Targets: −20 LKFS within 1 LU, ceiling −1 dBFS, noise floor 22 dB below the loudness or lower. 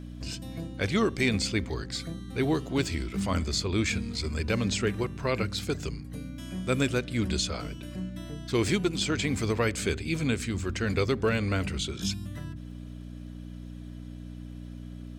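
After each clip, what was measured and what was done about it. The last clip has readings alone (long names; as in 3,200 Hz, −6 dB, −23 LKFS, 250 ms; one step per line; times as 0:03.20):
crackle rate 21 per second; mains hum 60 Hz; hum harmonics up to 300 Hz; level of the hum −39 dBFS; integrated loudness −29.5 LKFS; sample peak −14.0 dBFS; target loudness −20.0 LKFS
→ click removal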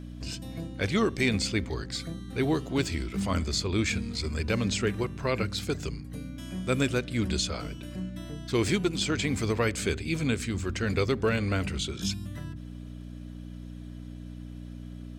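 crackle rate 0 per second; mains hum 60 Hz; hum harmonics up to 300 Hz; level of the hum −39 dBFS
→ hum removal 60 Hz, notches 5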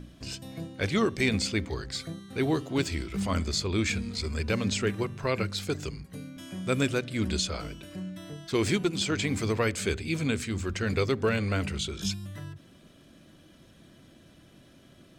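mains hum none found; integrated loudness −29.5 LKFS; sample peak −14.0 dBFS; target loudness −20.0 LKFS
→ level +9.5 dB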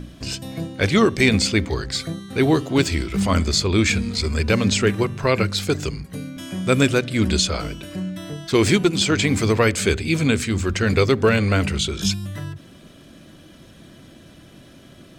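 integrated loudness −20.0 LKFS; sample peak −4.5 dBFS; background noise floor −47 dBFS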